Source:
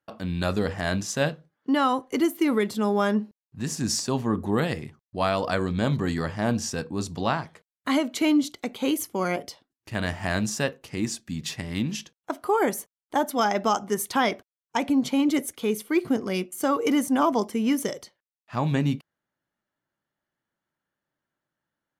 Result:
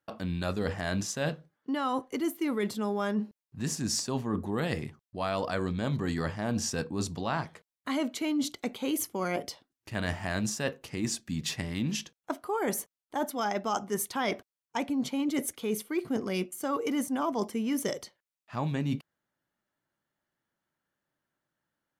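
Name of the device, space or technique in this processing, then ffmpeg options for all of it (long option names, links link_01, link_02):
compression on the reversed sound: -af "areverse,acompressor=threshold=-27dB:ratio=6,areverse"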